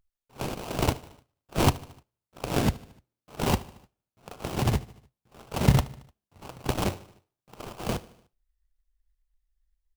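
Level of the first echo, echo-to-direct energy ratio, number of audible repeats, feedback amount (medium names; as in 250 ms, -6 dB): -20.5 dB, -19.0 dB, 3, 57%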